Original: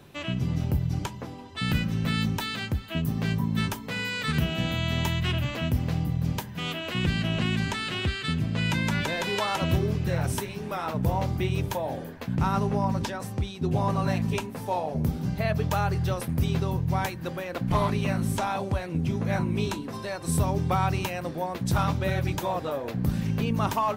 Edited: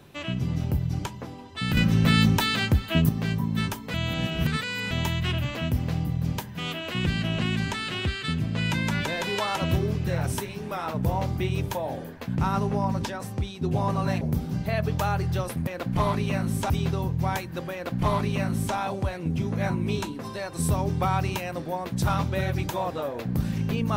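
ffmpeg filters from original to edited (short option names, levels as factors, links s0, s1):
-filter_complex "[0:a]asplit=8[s0][s1][s2][s3][s4][s5][s6][s7];[s0]atrim=end=1.772[s8];[s1]atrim=start=1.768:end=3.092,asetpts=PTS-STARTPTS,volume=2.24[s9];[s2]atrim=start=3.088:end=3.942[s10];[s3]atrim=start=3.938:end=4.912,asetpts=PTS-STARTPTS,areverse[s11];[s4]atrim=start=4.908:end=14.212[s12];[s5]atrim=start=14.928:end=16.392[s13];[s6]atrim=start=17.418:end=18.452[s14];[s7]atrim=start=16.388[s15];[s8][s9]acrossfade=d=0.004:c1=hsin:c2=hsin[s16];[s16][s10]acrossfade=d=0.004:c1=hsin:c2=hsin[s17];[s17][s11]acrossfade=d=0.004:c1=hsin:c2=hsin[s18];[s18][s12]acrossfade=d=0.004:c1=hsin:c2=hsin[s19];[s19][s13]acrossfade=d=0.004:c1=hsin:c2=hsin[s20];[s20][s14]acrossfade=d=0.004:c1=hsin:c2=hsin[s21];[s21][s15]acrossfade=d=0.004:c1=hsin:c2=hsin"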